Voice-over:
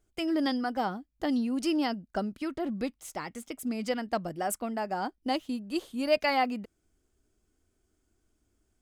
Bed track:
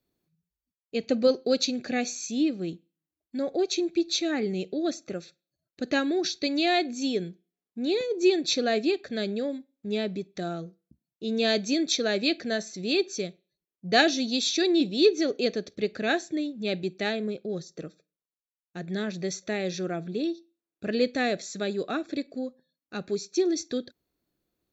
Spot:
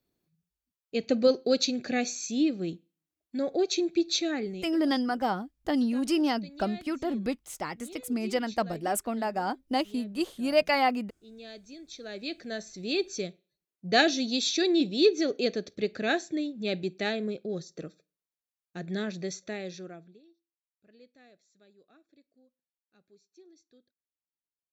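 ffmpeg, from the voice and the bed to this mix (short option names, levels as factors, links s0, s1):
-filter_complex "[0:a]adelay=4450,volume=1.26[s0];[1:a]volume=8.91,afade=t=out:st=4.17:d=0.61:silence=0.0944061,afade=t=in:st=11.89:d=1.42:silence=0.105925,afade=t=out:st=18.98:d=1.23:silence=0.0316228[s1];[s0][s1]amix=inputs=2:normalize=0"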